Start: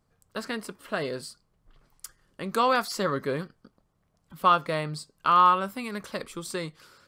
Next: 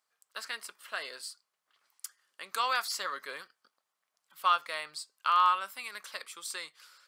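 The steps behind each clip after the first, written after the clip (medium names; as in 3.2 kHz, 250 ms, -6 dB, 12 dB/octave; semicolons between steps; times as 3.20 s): Bessel high-pass 1.6 kHz, order 2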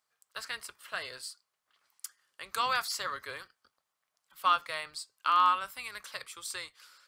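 octave divider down 2 oct, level -5 dB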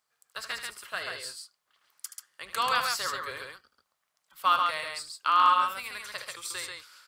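loudspeakers at several distances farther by 26 m -10 dB, 47 m -4 dB; trim +2 dB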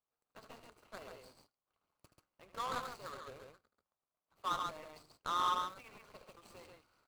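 median filter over 25 samples; trim -8 dB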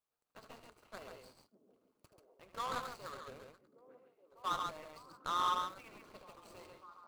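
repeats whose band climbs or falls 593 ms, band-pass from 250 Hz, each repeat 0.7 oct, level -10 dB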